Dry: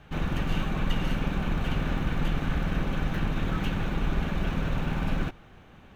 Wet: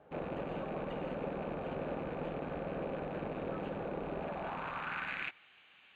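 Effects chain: rattle on loud lows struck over -33 dBFS, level -25 dBFS; Butterworth band-stop 5.5 kHz, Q 3.3; band-pass sweep 540 Hz -> 2.7 kHz, 4.16–5.46 s; trim +3 dB

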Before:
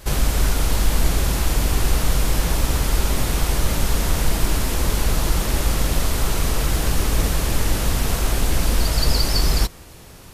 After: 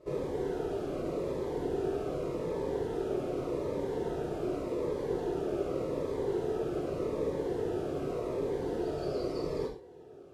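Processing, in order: band-pass filter 440 Hz, Q 3.9; gated-style reverb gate 160 ms falling, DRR -2.5 dB; Shepard-style phaser falling 0.85 Hz; trim +1 dB

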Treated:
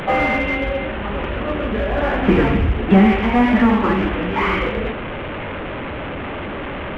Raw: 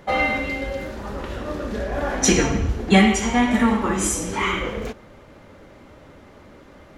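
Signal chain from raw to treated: one-bit delta coder 16 kbps, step -27 dBFS; in parallel at -6 dB: hard clipper -22 dBFS, distortion -6 dB; on the sum: trim +2.5 dB

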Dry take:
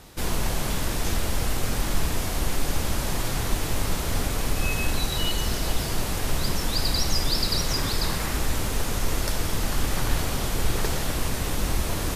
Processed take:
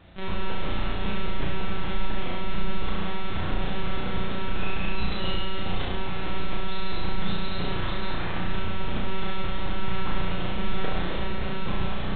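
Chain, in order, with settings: monotone LPC vocoder at 8 kHz 190 Hz; flutter echo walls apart 5.8 m, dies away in 0.8 s; trim -5 dB

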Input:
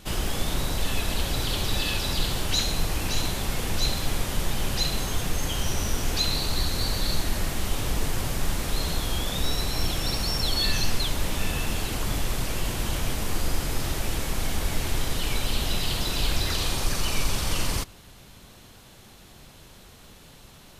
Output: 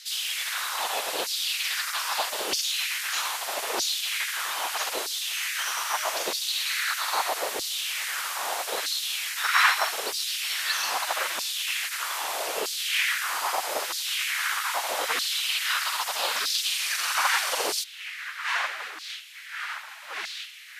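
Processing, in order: wind noise 580 Hz -22 dBFS; spectral gate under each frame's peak -20 dB weak; LFO high-pass saw down 0.79 Hz 380–4700 Hz; trim +2 dB

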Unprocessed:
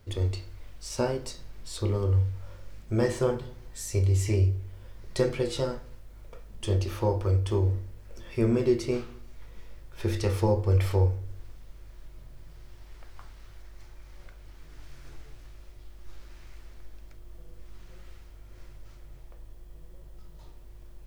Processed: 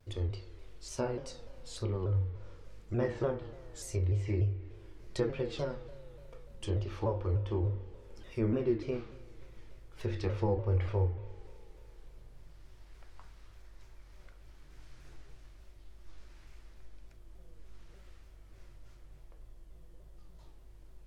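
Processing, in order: spring tank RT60 3.3 s, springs 36 ms, chirp 35 ms, DRR 14.5 dB; low-pass that closes with the level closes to 2.7 kHz, closed at -22.5 dBFS; vibrato with a chosen wave saw down 3.4 Hz, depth 160 cents; trim -6.5 dB

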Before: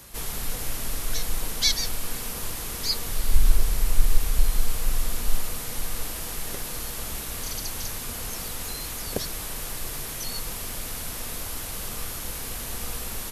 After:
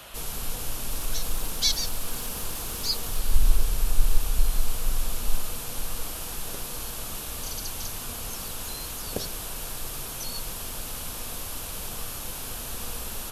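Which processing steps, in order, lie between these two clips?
0.91–3.20 s: companding laws mixed up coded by mu; band noise 490–3400 Hz -44 dBFS; peaking EQ 2 kHz -8.5 dB 0.48 oct; de-hum 55.99 Hz, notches 30; trim -1.5 dB

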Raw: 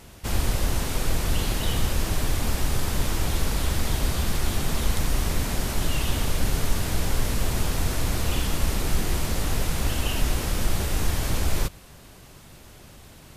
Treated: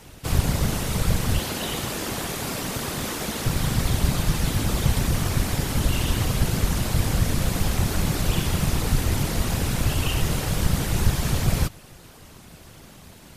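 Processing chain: 1.39–3.46 s: high-pass 130 Hz 24 dB/octave; whisper effect; trim +1.5 dB

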